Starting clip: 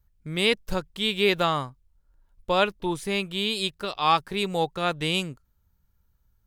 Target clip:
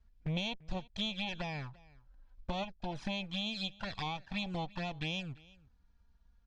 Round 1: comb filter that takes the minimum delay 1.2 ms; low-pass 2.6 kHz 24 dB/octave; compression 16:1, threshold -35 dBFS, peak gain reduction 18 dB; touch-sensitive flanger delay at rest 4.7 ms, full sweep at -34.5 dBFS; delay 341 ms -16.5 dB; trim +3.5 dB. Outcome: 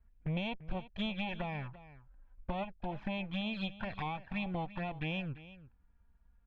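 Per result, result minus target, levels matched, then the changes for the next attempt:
4 kHz band -6.0 dB; echo-to-direct +6.5 dB
change: low-pass 5.4 kHz 24 dB/octave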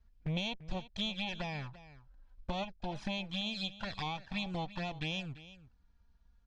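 echo-to-direct +6.5 dB
change: delay 341 ms -23 dB

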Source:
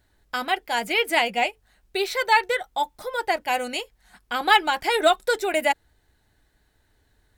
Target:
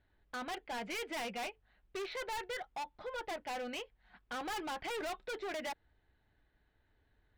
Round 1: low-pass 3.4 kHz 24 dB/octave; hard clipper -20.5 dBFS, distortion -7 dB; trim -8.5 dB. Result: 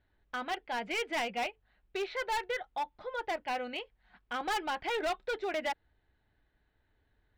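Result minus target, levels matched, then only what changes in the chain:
hard clipper: distortion -4 dB
change: hard clipper -29 dBFS, distortion -3 dB

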